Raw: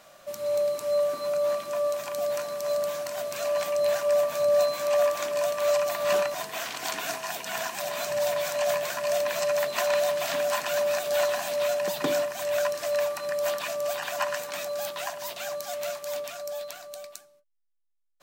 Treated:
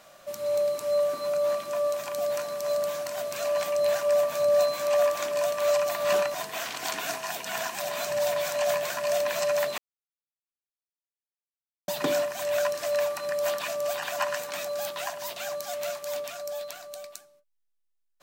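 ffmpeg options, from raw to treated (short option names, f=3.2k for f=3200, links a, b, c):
-filter_complex "[0:a]asplit=3[a][b][c];[a]atrim=end=9.78,asetpts=PTS-STARTPTS,afade=t=out:st=9.776:d=0.004:c=hsin[d];[b]atrim=start=9.78:end=11.88,asetpts=PTS-STARTPTS,volume=0[e];[c]atrim=start=11.88,asetpts=PTS-STARTPTS,afade=t=in:d=0.004:c=hsin[f];[d][e][f]concat=n=3:v=0:a=1"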